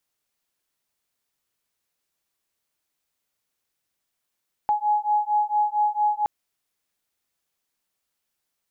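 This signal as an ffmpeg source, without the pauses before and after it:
-f lavfi -i "aevalsrc='0.075*(sin(2*PI*837*t)+sin(2*PI*841.4*t))':d=1.57:s=44100"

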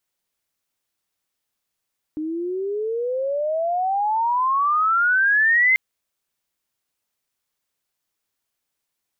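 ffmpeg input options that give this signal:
-f lavfi -i "aevalsrc='pow(10,(-13+11*(t/3.59-1))/20)*sin(2*PI*303*3.59/(33.5*log(2)/12)*(exp(33.5*log(2)/12*t/3.59)-1))':d=3.59:s=44100"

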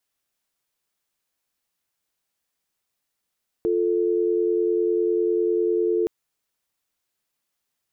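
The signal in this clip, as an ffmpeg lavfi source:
-f lavfi -i "aevalsrc='0.0841*(sin(2*PI*350*t)+sin(2*PI*440*t))':d=2.42:s=44100"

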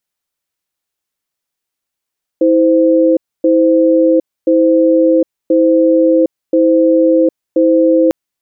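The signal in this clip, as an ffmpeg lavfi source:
-f lavfi -i "aevalsrc='0.335*(sin(2*PI*324*t)+sin(2*PI*517*t))*clip(min(mod(t,1.03),0.76-mod(t,1.03))/0.005,0,1)':d=5.7:s=44100"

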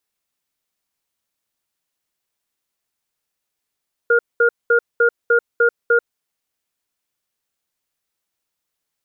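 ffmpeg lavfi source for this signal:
-f lavfi -i "aevalsrc='0.211*(sin(2*PI*470*t)+sin(2*PI*1420*t))*clip(min(mod(t,0.3),0.09-mod(t,0.3))/0.005,0,1)':d=2:s=44100"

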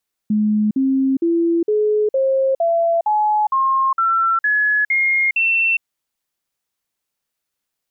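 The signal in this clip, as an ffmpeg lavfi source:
-f lavfi -i "aevalsrc='0.211*clip(min(mod(t,0.46),0.41-mod(t,0.46))/0.005,0,1)*sin(2*PI*212*pow(2,floor(t/0.46)/3)*mod(t,0.46))':d=5.52:s=44100"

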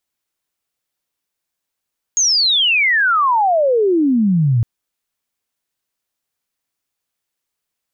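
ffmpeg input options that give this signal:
-f lavfi -i "aevalsrc='pow(10,(-11.5+0.5*t/2.46)/20)*sin(2*PI*6700*2.46/log(110/6700)*(exp(log(110/6700)*t/2.46)-1))':d=2.46:s=44100"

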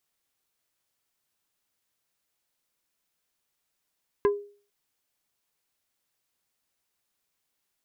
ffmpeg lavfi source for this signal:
-f lavfi -i "aevalsrc='0.158*pow(10,-3*t/0.42)*sin(2*PI*408*t)+0.0708*pow(10,-3*t/0.14)*sin(2*PI*1020*t)+0.0316*pow(10,-3*t/0.08)*sin(2*PI*1632*t)+0.0141*pow(10,-3*t/0.061)*sin(2*PI*2040*t)+0.00631*pow(10,-3*t/0.044)*sin(2*PI*2652*t)':d=0.45:s=44100"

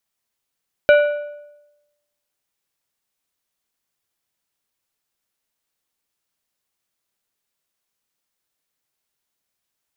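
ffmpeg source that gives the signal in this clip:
-f lavfi -i "aevalsrc='0.473*pow(10,-3*t/0.98)*sin(2*PI*588*t)+0.211*pow(10,-3*t/0.744)*sin(2*PI*1470*t)+0.0944*pow(10,-3*t/0.647)*sin(2*PI*2352*t)+0.0422*pow(10,-3*t/0.605)*sin(2*PI*2940*t)+0.0188*pow(10,-3*t/0.559)*sin(2*PI*3822*t)':d=1.55:s=44100"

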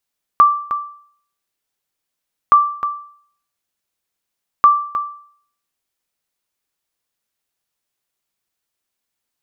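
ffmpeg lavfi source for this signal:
-f lavfi -i "aevalsrc='0.75*(sin(2*PI*1170*mod(t,2.12))*exp(-6.91*mod(t,2.12)/0.56)+0.282*sin(2*PI*1170*max(mod(t,2.12)-0.31,0))*exp(-6.91*max(mod(t,2.12)-0.31,0)/0.56))':d=6.36:s=44100"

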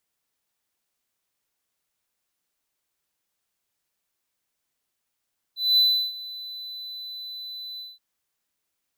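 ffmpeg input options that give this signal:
-f lavfi -i "aevalsrc='0.237*(1-4*abs(mod(4000*t+0.25,1)-0.5))':d=2.426:s=44100,afade=t=in:d=0.216,afade=t=out:st=0.216:d=0.343:silence=0.106,afade=t=out:st=2.23:d=0.196"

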